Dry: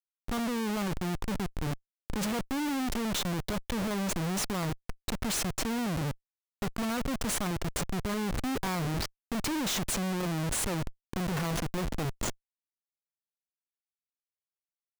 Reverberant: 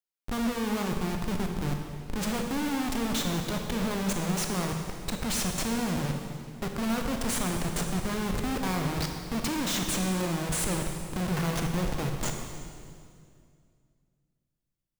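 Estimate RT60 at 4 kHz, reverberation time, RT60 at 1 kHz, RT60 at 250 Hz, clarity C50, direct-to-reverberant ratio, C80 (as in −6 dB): 2.0 s, 2.2 s, 2.1 s, 2.8 s, 4.0 dB, 2.5 dB, 5.0 dB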